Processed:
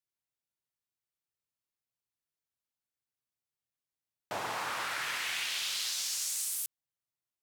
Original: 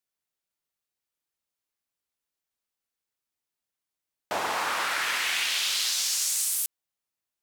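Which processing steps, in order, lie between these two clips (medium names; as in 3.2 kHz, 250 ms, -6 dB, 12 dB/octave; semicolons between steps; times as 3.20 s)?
peaking EQ 120 Hz +11 dB 0.8 oct; trim -7.5 dB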